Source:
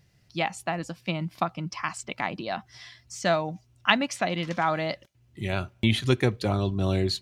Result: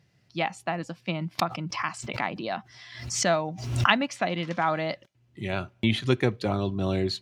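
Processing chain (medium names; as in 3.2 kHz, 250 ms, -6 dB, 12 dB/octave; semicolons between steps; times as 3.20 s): high-pass 110 Hz; treble shelf 7.6 kHz -11.5 dB; 1.39–4.03 s: swell ahead of each attack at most 65 dB/s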